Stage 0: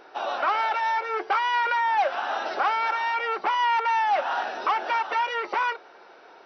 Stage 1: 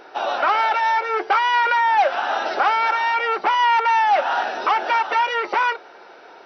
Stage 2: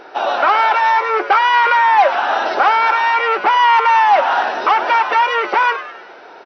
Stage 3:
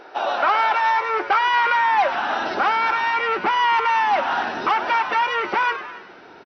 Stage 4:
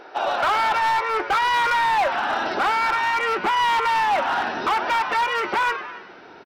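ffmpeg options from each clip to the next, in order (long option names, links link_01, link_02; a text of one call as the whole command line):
ffmpeg -i in.wav -af "bandreject=frequency=1100:width=16,volume=6dB" out.wav
ffmpeg -i in.wav -filter_complex "[0:a]highshelf=frequency=5200:gain=-6,asplit=6[link_01][link_02][link_03][link_04][link_05][link_06];[link_02]adelay=100,afreqshift=120,volume=-13dB[link_07];[link_03]adelay=200,afreqshift=240,volume=-19.4dB[link_08];[link_04]adelay=300,afreqshift=360,volume=-25.8dB[link_09];[link_05]adelay=400,afreqshift=480,volume=-32.1dB[link_10];[link_06]adelay=500,afreqshift=600,volume=-38.5dB[link_11];[link_01][link_07][link_08][link_09][link_10][link_11]amix=inputs=6:normalize=0,volume=5.5dB" out.wav
ffmpeg -i in.wav -af "aecho=1:1:276:0.112,asubboost=boost=10.5:cutoff=200,volume=-4.5dB" out.wav
ffmpeg -i in.wav -af "asoftclip=type=hard:threshold=-16.5dB" out.wav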